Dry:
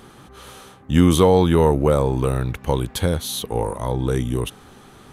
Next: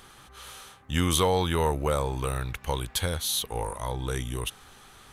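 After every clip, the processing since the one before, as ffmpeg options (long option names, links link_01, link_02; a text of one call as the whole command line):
ffmpeg -i in.wav -af "equalizer=frequency=240:width=0.37:gain=-14" out.wav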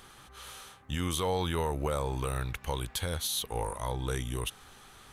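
ffmpeg -i in.wav -af "alimiter=limit=-19dB:level=0:latency=1:release=127,volume=-2dB" out.wav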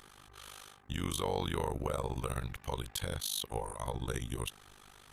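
ffmpeg -i in.wav -af "tremolo=f=50:d=0.974" out.wav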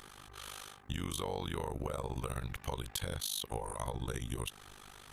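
ffmpeg -i in.wav -af "acompressor=threshold=-37dB:ratio=6,volume=3.5dB" out.wav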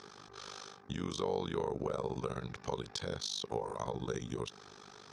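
ffmpeg -i in.wav -af "highpass=130,equalizer=frequency=190:width_type=q:width=4:gain=4,equalizer=frequency=420:width_type=q:width=4:gain=7,equalizer=frequency=2000:width_type=q:width=4:gain=-5,equalizer=frequency=2900:width_type=q:width=4:gain=-8,equalizer=frequency=5300:width_type=q:width=4:gain=8,lowpass=frequency=6200:width=0.5412,lowpass=frequency=6200:width=1.3066,volume=1dB" out.wav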